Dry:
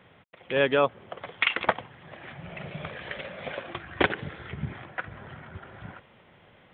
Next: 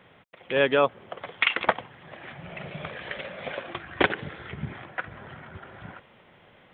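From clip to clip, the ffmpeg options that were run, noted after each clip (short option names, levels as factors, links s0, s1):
-af "equalizer=f=75:w=0.58:g=-4,volume=1.19"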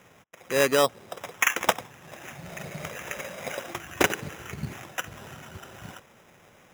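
-af "acrusher=samples=10:mix=1:aa=0.000001"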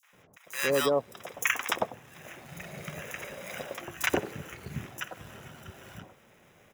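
-filter_complex "[0:a]acrossover=split=980|5900[s0][s1][s2];[s1]adelay=30[s3];[s0]adelay=130[s4];[s4][s3][s2]amix=inputs=3:normalize=0,volume=0.708"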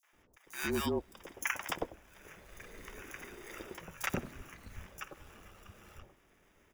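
-af "afreqshift=-180,volume=0.422"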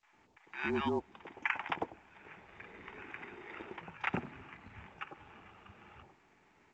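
-af "highpass=100,equalizer=f=550:t=q:w=4:g=-7,equalizer=f=850:t=q:w=4:g=8,equalizer=f=2400:t=q:w=4:g=3,lowpass=f=3000:w=0.5412,lowpass=f=3000:w=1.3066" -ar 16000 -c:a pcm_mulaw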